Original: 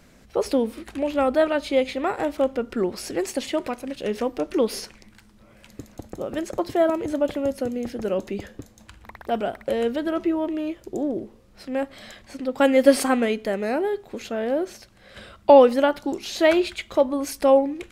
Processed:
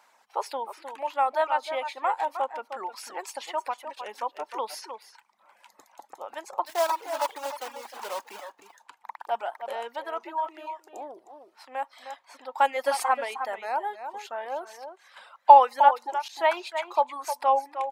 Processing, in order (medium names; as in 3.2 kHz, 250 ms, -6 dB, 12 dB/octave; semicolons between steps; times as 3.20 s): 6.66–8.53 s: block-companded coder 3-bit; echo from a far wall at 53 m, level -8 dB; reverb removal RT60 0.7 s; 16.28–16.87 s: expander -28 dBFS; resonant high-pass 900 Hz, resonance Q 6.1; trim -6.5 dB